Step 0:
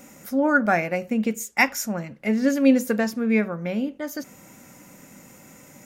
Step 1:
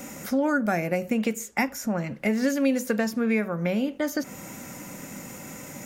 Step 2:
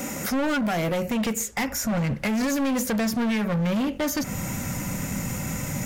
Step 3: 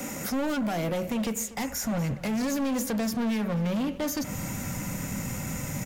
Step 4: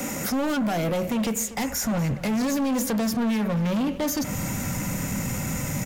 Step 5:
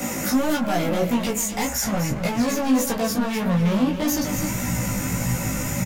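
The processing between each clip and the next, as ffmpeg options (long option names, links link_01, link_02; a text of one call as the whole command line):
ffmpeg -i in.wav -filter_complex "[0:a]acrossover=split=520|2200|7500[link_01][link_02][link_03][link_04];[link_01]acompressor=threshold=-34dB:ratio=4[link_05];[link_02]acompressor=threshold=-39dB:ratio=4[link_06];[link_03]acompressor=threshold=-48dB:ratio=4[link_07];[link_04]acompressor=threshold=-51dB:ratio=4[link_08];[link_05][link_06][link_07][link_08]amix=inputs=4:normalize=0,volume=8dB" out.wav
ffmpeg -i in.wav -af "asubboost=boost=6.5:cutoff=130,alimiter=limit=-17dB:level=0:latency=1:release=126,volume=30dB,asoftclip=hard,volume=-30dB,volume=8dB" out.wav
ffmpeg -i in.wav -filter_complex "[0:a]acrossover=split=200|1200|2800[link_01][link_02][link_03][link_04];[link_03]alimiter=level_in=11dB:limit=-24dB:level=0:latency=1,volume=-11dB[link_05];[link_01][link_02][link_05][link_04]amix=inputs=4:normalize=0,aecho=1:1:243|486|729:0.141|0.0396|0.0111,volume=-3.5dB" out.wav
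ffmpeg -i in.wav -af "asoftclip=type=tanh:threshold=-23.5dB,volume=5.5dB" out.wav
ffmpeg -i in.wav -filter_complex "[0:a]asplit=2[link_01][link_02];[link_02]adelay=16,volume=-3dB[link_03];[link_01][link_03]amix=inputs=2:normalize=0,asplit=2[link_04][link_05];[link_05]aecho=0:1:253:0.335[link_06];[link_04][link_06]amix=inputs=2:normalize=0,flanger=delay=17:depth=2.5:speed=1.7,volume=4.5dB" out.wav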